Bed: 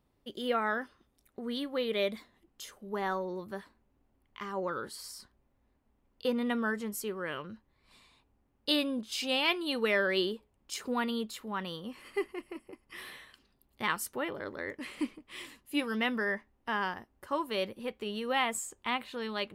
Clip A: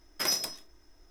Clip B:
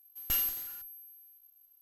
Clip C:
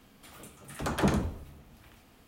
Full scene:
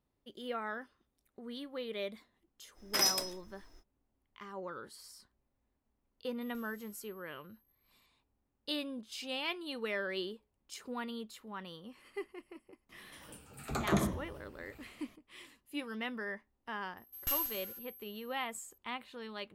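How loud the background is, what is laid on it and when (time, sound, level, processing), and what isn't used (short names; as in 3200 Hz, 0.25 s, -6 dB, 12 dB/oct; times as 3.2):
bed -8.5 dB
2.74 add A -0.5 dB, fades 0.05 s
6.25 add B -15.5 dB + compressor, threshold -43 dBFS
12.89 add C -5 dB + moving spectral ripple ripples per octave 1.2, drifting -0.94 Hz, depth 9 dB
16.97 add B -4 dB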